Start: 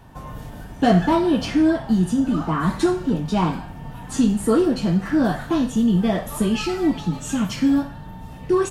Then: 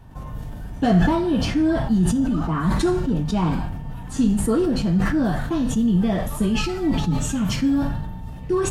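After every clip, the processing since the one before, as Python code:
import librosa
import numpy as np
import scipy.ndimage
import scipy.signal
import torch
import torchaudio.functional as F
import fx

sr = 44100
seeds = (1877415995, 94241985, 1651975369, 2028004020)

y = fx.low_shelf(x, sr, hz=160.0, db=10.5)
y = fx.sustainer(y, sr, db_per_s=35.0)
y = y * 10.0 ** (-5.0 / 20.0)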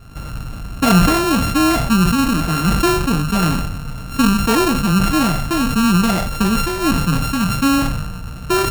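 y = np.r_[np.sort(x[:len(x) // 32 * 32].reshape(-1, 32), axis=1).ravel(), x[len(x) // 32 * 32:]]
y = y * 10.0 ** (4.5 / 20.0)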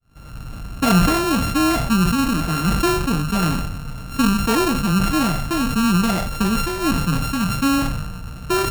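y = fx.fade_in_head(x, sr, length_s=0.57)
y = y * 10.0 ** (-3.0 / 20.0)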